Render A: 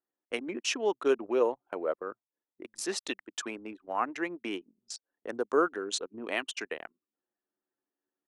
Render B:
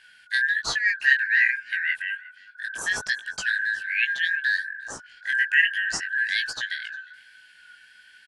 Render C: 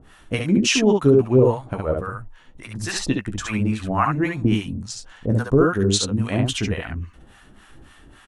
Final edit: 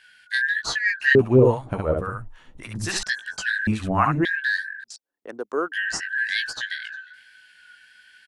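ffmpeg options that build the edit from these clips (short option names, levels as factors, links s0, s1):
-filter_complex "[2:a]asplit=2[s0][s1];[1:a]asplit=4[s2][s3][s4][s5];[s2]atrim=end=1.152[s6];[s0]atrim=start=1.148:end=3.032[s7];[s3]atrim=start=3.028:end=3.672[s8];[s1]atrim=start=3.668:end=4.252[s9];[s4]atrim=start=4.248:end=4.842[s10];[0:a]atrim=start=4.838:end=5.722[s11];[s5]atrim=start=5.718[s12];[s6][s7]acrossfade=d=0.004:c1=hsin:c2=hsin[s13];[s13][s8]acrossfade=d=0.004:c1=hsin:c2=hsin[s14];[s14][s9]acrossfade=d=0.004:c1=hsin:c2=hsin[s15];[s15][s10]acrossfade=d=0.004:c1=hsin:c2=hsin[s16];[s16][s11]acrossfade=d=0.004:c1=hsin:c2=hsin[s17];[s17][s12]acrossfade=d=0.004:c1=hsin:c2=hsin"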